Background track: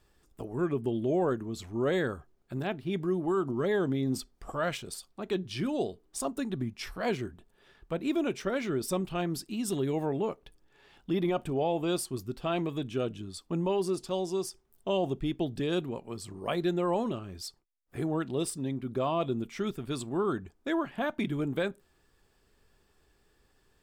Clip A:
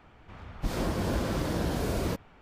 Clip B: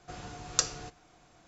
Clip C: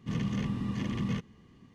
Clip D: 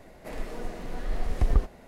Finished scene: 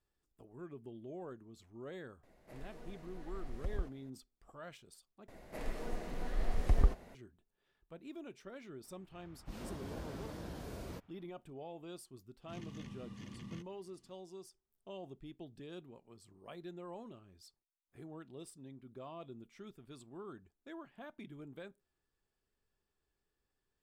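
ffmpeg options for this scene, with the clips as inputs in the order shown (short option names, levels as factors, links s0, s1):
-filter_complex "[4:a]asplit=2[s0][s1];[0:a]volume=0.112[s2];[3:a]highshelf=f=3500:g=9.5[s3];[s2]asplit=2[s4][s5];[s4]atrim=end=5.284[s6];[s1]atrim=end=1.87,asetpts=PTS-STARTPTS,volume=0.562[s7];[s5]atrim=start=7.146[s8];[s0]atrim=end=1.87,asetpts=PTS-STARTPTS,volume=0.158,afade=t=in:d=0.004:c=hsin,afade=t=out:st=1.866:d=0.004:c=hsin,adelay=2230[s9];[1:a]atrim=end=2.41,asetpts=PTS-STARTPTS,volume=0.158,afade=t=in:d=0.004:c=hsin,afade=t=out:st=2.406:d=0.004:c=hsin,adelay=8840[s10];[s3]atrim=end=1.74,asetpts=PTS-STARTPTS,volume=0.141,afade=t=in:d=0.004:c=hsin,afade=t=out:st=1.736:d=0.004:c=hsin,adelay=12420[s11];[s6][s7]acrossfade=d=0.004:c1=hsin:c2=hsin[s12];[s12][s8]acrossfade=d=0.004:c1=hsin:c2=hsin[s13];[s13][s9][s10][s11]amix=inputs=4:normalize=0"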